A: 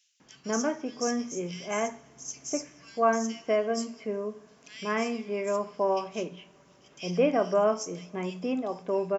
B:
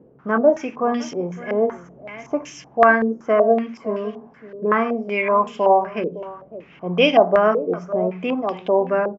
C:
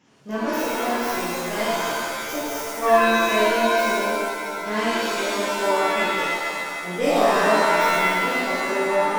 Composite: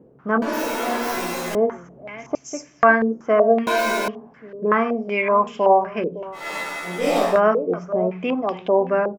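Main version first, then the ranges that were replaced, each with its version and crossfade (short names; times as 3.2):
B
0.42–1.55 from C
2.35–2.83 from A
3.67–4.08 from C
6.44–7.29 from C, crossfade 0.24 s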